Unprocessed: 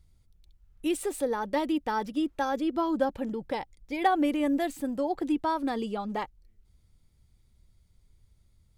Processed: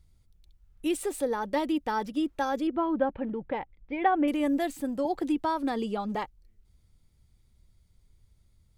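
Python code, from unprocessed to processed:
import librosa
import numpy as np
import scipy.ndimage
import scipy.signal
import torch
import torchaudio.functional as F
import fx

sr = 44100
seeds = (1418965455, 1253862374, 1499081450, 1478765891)

y = fx.lowpass(x, sr, hz=2700.0, slope=24, at=(2.67, 4.28))
y = fx.band_squash(y, sr, depth_pct=40, at=(5.05, 6.15))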